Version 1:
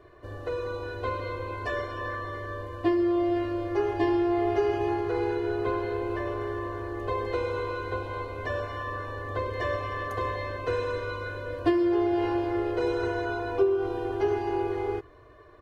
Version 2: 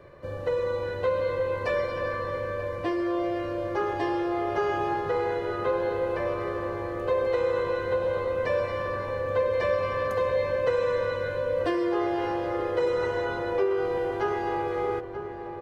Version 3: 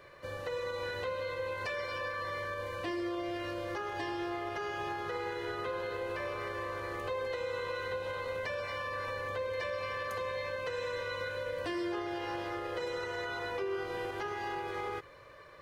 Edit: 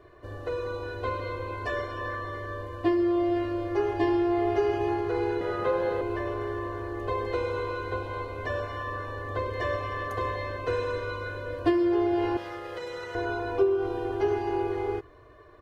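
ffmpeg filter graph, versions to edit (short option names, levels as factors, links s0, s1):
-filter_complex "[0:a]asplit=3[s0][s1][s2];[s0]atrim=end=5.412[s3];[1:a]atrim=start=5.408:end=6.012[s4];[s1]atrim=start=6.008:end=12.372[s5];[2:a]atrim=start=12.368:end=13.152[s6];[s2]atrim=start=13.148[s7];[s3][s4]acrossfade=d=0.004:c1=hsin:c2=hsin[s8];[s8][s5]acrossfade=d=0.004:c1=hsin:c2=hsin[s9];[s9][s6]acrossfade=d=0.004:c1=hsin:c2=hsin[s10];[s10][s7]acrossfade=d=0.004:c1=hsin:c2=hsin"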